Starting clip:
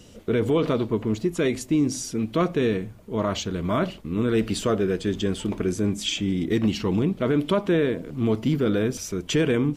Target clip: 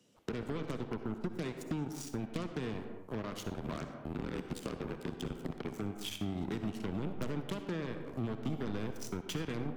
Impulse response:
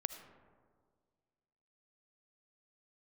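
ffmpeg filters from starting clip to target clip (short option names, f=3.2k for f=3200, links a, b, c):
-filter_complex "[0:a]asettb=1/sr,asplit=3[a][b][c];[a]atrim=end=3.524[d];[b]atrim=start=3.52:end=5.74,asetpts=PTS-STARTPTS,afade=t=in:d=0.004:c=qsin,afade=t=out:st=2.216:d=0.004:c=qsin,aeval=exprs='val(0)*sin(2*PI*38*n/s)':c=same[e];[c]atrim=start=5.736[f];[d][e]acrossfade=d=0.004:c1=hsin:c2=qsin[g];[g][f]acrossfade=d=0.004:c1=qsin:c2=hsin,acompressor=threshold=-28dB:ratio=6,highpass=f=130:w=0.5412,highpass=f=130:w=1.3066,aeval=exprs='0.112*(cos(1*acos(clip(val(0)/0.112,-1,1)))-cos(1*PI/2))+0.0178*(cos(5*acos(clip(val(0)/0.112,-1,1)))-cos(5*PI/2))+0.0316*(cos(7*acos(clip(val(0)/0.112,-1,1)))-cos(7*PI/2))':c=same[h];[1:a]atrim=start_sample=2205,afade=t=out:st=0.41:d=0.01,atrim=end_sample=18522,asetrate=52920,aresample=44100[i];[h][i]afir=irnorm=-1:irlink=0,acrossover=split=200[j][k];[k]acompressor=threshold=-44dB:ratio=2[l];[j][l]amix=inputs=2:normalize=0"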